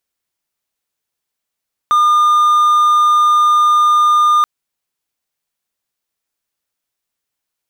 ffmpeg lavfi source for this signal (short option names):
-f lavfi -i "aevalsrc='0.501*(1-4*abs(mod(1210*t+0.25,1)-0.5))':d=2.53:s=44100"